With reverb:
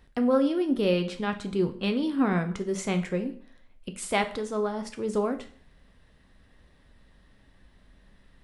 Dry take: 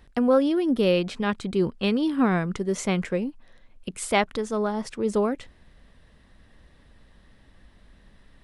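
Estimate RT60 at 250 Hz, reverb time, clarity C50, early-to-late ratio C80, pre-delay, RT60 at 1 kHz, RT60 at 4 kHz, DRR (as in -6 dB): 0.50 s, 0.50 s, 13.0 dB, 17.0 dB, 4 ms, 0.50 s, 0.45 s, 6.5 dB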